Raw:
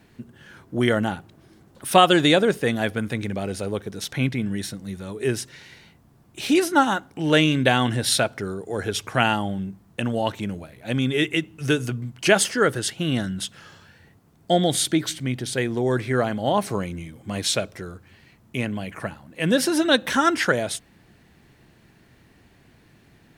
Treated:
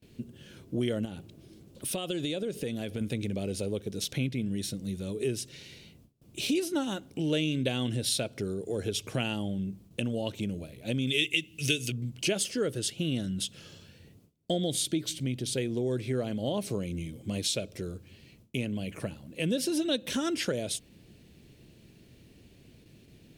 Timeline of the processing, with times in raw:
0:01.05–0:03.01: downward compressor 3 to 1, threshold −29 dBFS
0:11.07–0:11.92: high shelf with overshoot 1,700 Hz +10.5 dB, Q 1.5
whole clip: noise gate with hold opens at −46 dBFS; flat-topped bell 1,200 Hz −12.5 dB; downward compressor 2.5 to 1, threshold −30 dBFS

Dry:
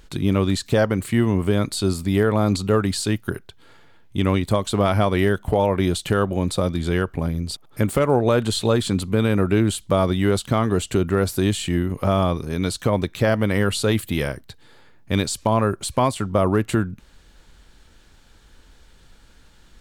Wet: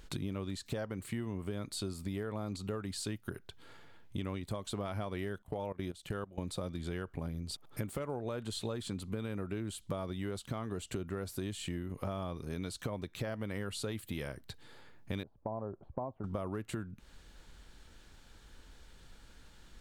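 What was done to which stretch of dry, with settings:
0:05.42–0:06.38: output level in coarse steps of 20 dB
0:15.23–0:16.24: transistor ladder low-pass 940 Hz, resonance 40%
whole clip: downward compressor 6 to 1, threshold −31 dBFS; level −5 dB

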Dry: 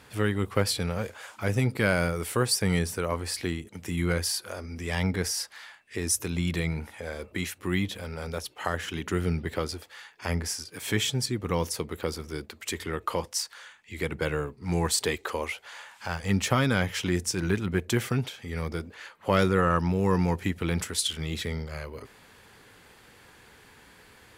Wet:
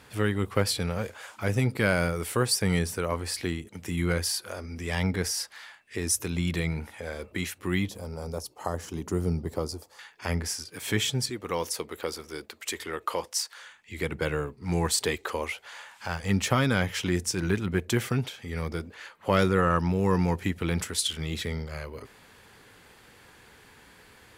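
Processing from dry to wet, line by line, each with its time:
0:07.89–0:09.99: flat-topped bell 2,300 Hz −13 dB
0:11.30–0:13.62: bass and treble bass −12 dB, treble +1 dB

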